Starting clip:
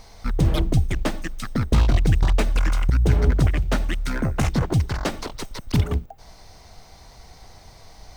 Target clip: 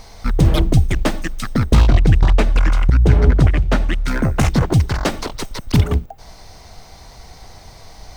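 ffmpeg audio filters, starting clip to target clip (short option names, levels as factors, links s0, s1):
-filter_complex "[0:a]asettb=1/sr,asplit=3[s0][s1][s2];[s0]atrim=end=1.884[s3];[s1]atrim=start=1.88:end=4.08,asetpts=PTS-STARTPTS,afade=t=in:d=0.004:c=qsin,afade=t=out:st=2.196:d=0.004:c=qsin,highshelf=f=6100:g=-11.5[s4];[s2]atrim=start=4.076[s5];[s3][s4]acrossfade=d=0.004:c1=hsin:c2=qsin[s6];[s6][s5]acrossfade=d=0.004:c1=qsin:c2=hsin,volume=2"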